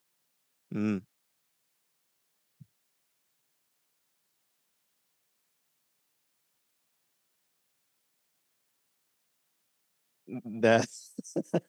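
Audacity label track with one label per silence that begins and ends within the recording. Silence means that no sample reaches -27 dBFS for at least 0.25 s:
0.970000	10.640000	silence
10.840000	11.190000	silence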